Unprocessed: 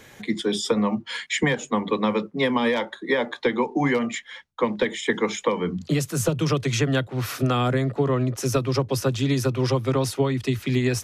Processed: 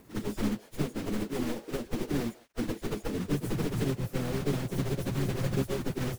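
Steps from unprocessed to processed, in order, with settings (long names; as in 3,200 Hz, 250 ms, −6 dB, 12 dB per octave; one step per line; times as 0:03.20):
wavefolder on the positive side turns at −23.5 dBFS
echo through a band-pass that steps 275 ms, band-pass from 810 Hz, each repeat 1.4 octaves, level −8.5 dB
pitch-shifted copies added −12 semitones −15 dB, +5 semitones −7 dB, +7 semitones −9 dB
drawn EQ curve 380 Hz 0 dB, 1,000 Hz −21 dB, 3,200 Hz −29 dB, 12,000 Hz −12 dB
log-companded quantiser 4 bits
time stretch by phase vocoder 0.56×
level −2 dB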